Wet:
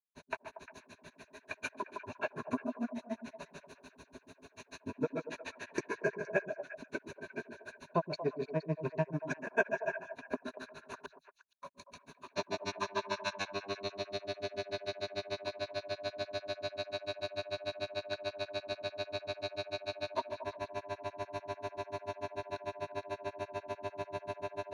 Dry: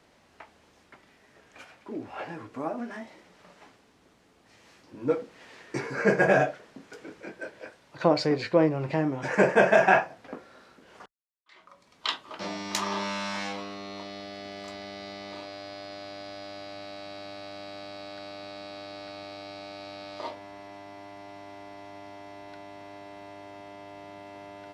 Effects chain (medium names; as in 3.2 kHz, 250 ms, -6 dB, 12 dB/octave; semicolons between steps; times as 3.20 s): rippled EQ curve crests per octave 1.5, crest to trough 14 dB; compression 3:1, threshold -40 dBFS, peak gain reduction 22.5 dB; granulator 80 ms, grains 6.8 per s, pitch spread up and down by 0 st; on a send: repeats whose band climbs or falls 117 ms, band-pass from 250 Hz, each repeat 1.4 oct, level -6 dB; on the sum: trim +8.5 dB